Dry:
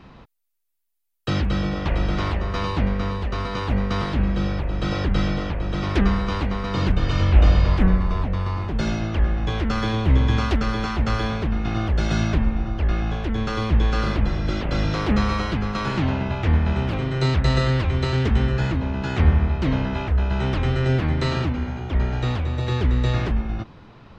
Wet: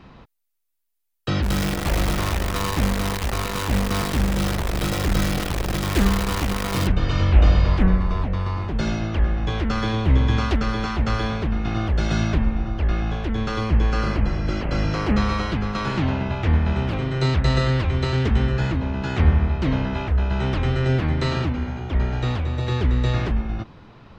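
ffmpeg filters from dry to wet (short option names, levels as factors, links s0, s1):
-filter_complex "[0:a]asplit=3[s0][s1][s2];[s0]afade=t=out:st=1.42:d=0.02[s3];[s1]acrusher=bits=5:dc=4:mix=0:aa=0.000001,afade=t=in:st=1.42:d=0.02,afade=t=out:st=6.86:d=0.02[s4];[s2]afade=t=in:st=6.86:d=0.02[s5];[s3][s4][s5]amix=inputs=3:normalize=0,asettb=1/sr,asplit=3[s6][s7][s8];[s6]atrim=end=13.604[s9];[s7]atrim=start=13.6:end=15.16,asetpts=PTS-STARTPTS,afade=t=in:d=0.004:c=qsin,afade=t=out:st=1.556:d=0.004:c=qsin,bandreject=f=3600:w=5.3[s10];[s8]atrim=start=15.156[s11];[s9][s10]acrossfade=d=0.004:c1=hsin:c2=qsin[s12];[s12][s11]acrossfade=d=0.004:c1=qsin:c2=hsin"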